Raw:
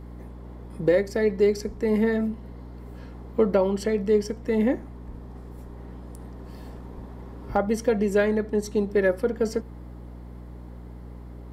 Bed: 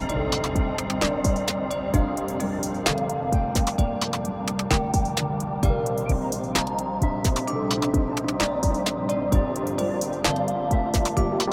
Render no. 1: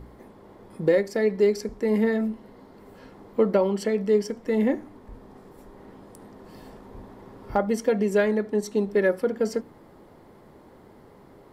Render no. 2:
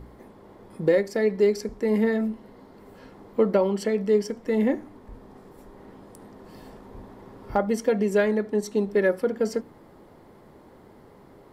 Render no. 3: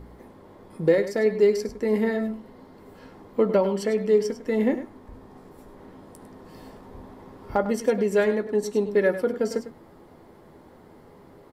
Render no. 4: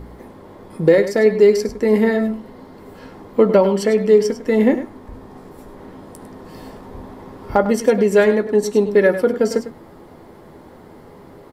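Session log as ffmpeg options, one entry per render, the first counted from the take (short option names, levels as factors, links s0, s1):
-af "bandreject=f=60:t=h:w=4,bandreject=f=120:t=h:w=4,bandreject=f=180:t=h:w=4,bandreject=f=240:t=h:w=4,bandreject=f=300:t=h:w=4"
-af anull
-filter_complex "[0:a]asplit=2[s0][s1];[s1]adelay=12,volume=0.282[s2];[s0][s2]amix=inputs=2:normalize=0,aecho=1:1:101:0.251"
-af "volume=2.51,alimiter=limit=0.708:level=0:latency=1"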